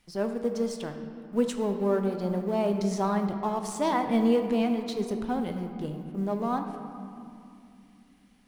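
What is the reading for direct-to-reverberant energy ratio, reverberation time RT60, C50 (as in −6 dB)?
5.0 dB, 2.6 s, 6.5 dB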